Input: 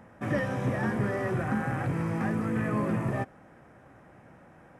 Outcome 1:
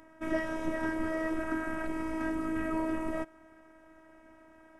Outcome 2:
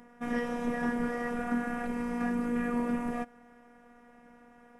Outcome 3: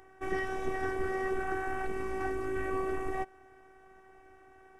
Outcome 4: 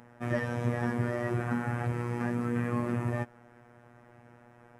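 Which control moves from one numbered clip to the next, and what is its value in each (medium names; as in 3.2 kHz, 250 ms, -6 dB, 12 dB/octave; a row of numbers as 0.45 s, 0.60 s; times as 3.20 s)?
robot voice, frequency: 320 Hz, 240 Hz, 380 Hz, 120 Hz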